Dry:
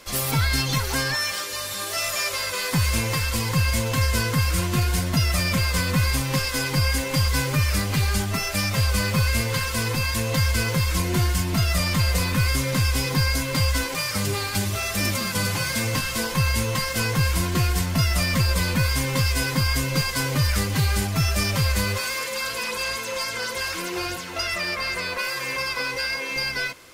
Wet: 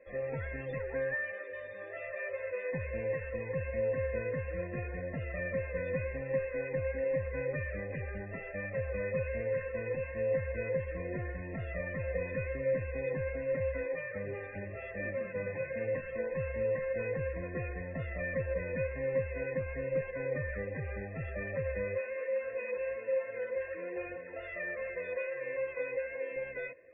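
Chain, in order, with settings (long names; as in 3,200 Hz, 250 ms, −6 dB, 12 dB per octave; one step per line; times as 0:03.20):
formant resonators in series e
spectral peaks only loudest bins 64
notch filter 2,300 Hz, Q 7.7
level +2 dB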